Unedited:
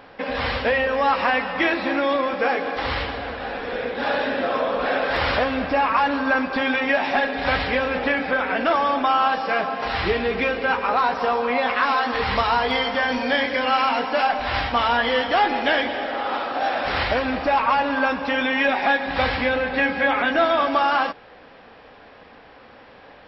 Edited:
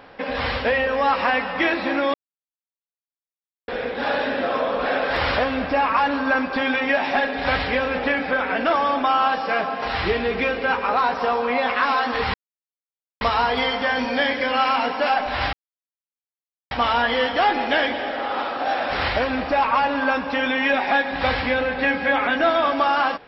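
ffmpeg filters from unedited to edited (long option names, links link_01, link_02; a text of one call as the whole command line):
ffmpeg -i in.wav -filter_complex "[0:a]asplit=5[link_01][link_02][link_03][link_04][link_05];[link_01]atrim=end=2.14,asetpts=PTS-STARTPTS,afade=type=out:start_time=2.136:duration=0.004:curve=hsin[link_06];[link_02]atrim=start=2.14:end=3.68,asetpts=PTS-STARTPTS,volume=0[link_07];[link_03]atrim=start=3.68:end=12.34,asetpts=PTS-STARTPTS,afade=type=in:duration=0.004:curve=hsin,afade=type=out:start_time=8.656:duration=0.004:curve=hsin,apad=pad_dur=0.87[link_08];[link_04]atrim=start=12.34:end=14.66,asetpts=PTS-STARTPTS,afade=type=in:duration=0.004:curve=hsin,afade=type=out:start_time=2.316:duration=0.004:curve=hsin,apad=pad_dur=1.18[link_09];[link_05]atrim=start=14.66,asetpts=PTS-STARTPTS,afade=type=in:duration=0.004:curve=hsin[link_10];[link_06][link_07][link_08][link_09][link_10]concat=n=5:v=0:a=1" out.wav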